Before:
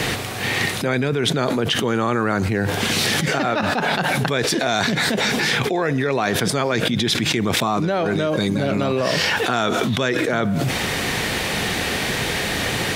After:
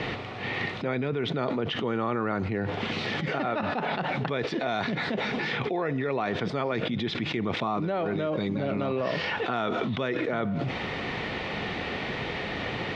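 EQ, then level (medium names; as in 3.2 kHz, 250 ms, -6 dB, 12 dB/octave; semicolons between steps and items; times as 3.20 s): Bessel low-pass 2.6 kHz, order 4; bass shelf 120 Hz -4.5 dB; band-stop 1.6 kHz, Q 9.3; -7.0 dB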